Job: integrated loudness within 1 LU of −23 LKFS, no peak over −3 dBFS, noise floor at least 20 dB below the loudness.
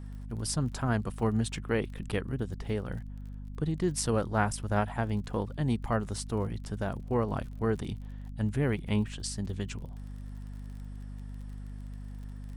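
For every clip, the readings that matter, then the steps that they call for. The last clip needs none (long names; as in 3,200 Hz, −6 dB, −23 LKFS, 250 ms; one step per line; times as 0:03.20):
crackle rate 37 per second; mains hum 50 Hz; hum harmonics up to 250 Hz; level of the hum −38 dBFS; integrated loudness −32.0 LKFS; sample peak −14.0 dBFS; target loudness −23.0 LKFS
→ click removal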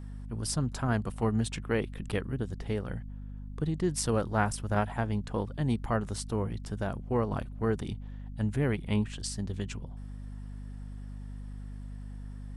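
crackle rate 0 per second; mains hum 50 Hz; hum harmonics up to 250 Hz; level of the hum −38 dBFS
→ hum removal 50 Hz, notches 5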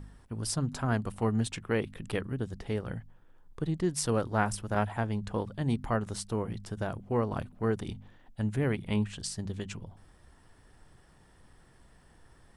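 mains hum none found; integrated loudness −32.5 LKFS; sample peak −13.5 dBFS; target loudness −23.0 LKFS
→ level +9.5 dB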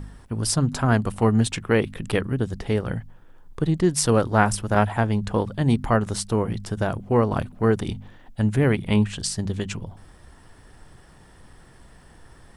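integrated loudness −23.0 LKFS; sample peak −4.0 dBFS; background noise floor −50 dBFS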